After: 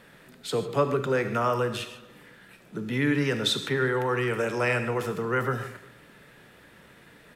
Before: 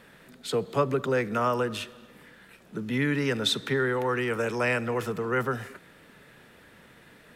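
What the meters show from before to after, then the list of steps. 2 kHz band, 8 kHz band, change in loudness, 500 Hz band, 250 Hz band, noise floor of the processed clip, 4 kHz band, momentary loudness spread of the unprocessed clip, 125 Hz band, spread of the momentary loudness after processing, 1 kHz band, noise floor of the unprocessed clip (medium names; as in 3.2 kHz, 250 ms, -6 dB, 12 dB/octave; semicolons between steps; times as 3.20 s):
+0.5 dB, +0.5 dB, +1.0 dB, +0.5 dB, +0.5 dB, -54 dBFS, +0.5 dB, 11 LU, +2.0 dB, 11 LU, +0.5 dB, -55 dBFS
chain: echo from a far wall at 61 m, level -27 dB; gated-style reverb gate 170 ms flat, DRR 8 dB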